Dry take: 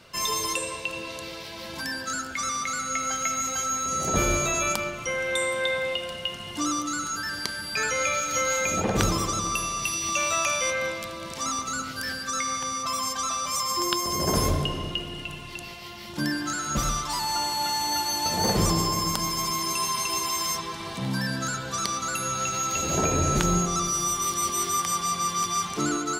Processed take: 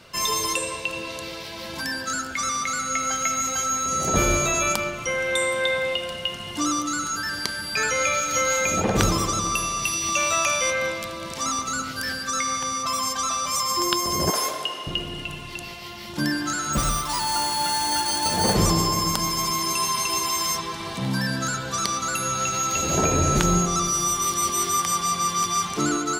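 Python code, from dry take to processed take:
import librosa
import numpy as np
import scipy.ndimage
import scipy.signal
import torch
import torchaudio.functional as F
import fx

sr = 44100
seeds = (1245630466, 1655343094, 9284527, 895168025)

y = fx.highpass(x, sr, hz=670.0, slope=12, at=(14.3, 14.87))
y = fx.resample_bad(y, sr, factor=3, down='none', up='hold', at=(16.73, 18.54))
y = y * 10.0 ** (3.0 / 20.0)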